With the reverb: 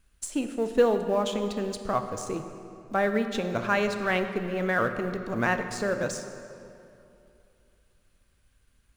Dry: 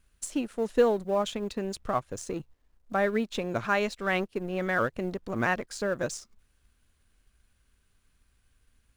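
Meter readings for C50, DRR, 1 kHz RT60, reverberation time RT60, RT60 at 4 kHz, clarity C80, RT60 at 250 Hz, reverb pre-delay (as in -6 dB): 8.0 dB, 7.0 dB, 2.7 s, 2.8 s, 1.8 s, 9.0 dB, 2.9 s, 10 ms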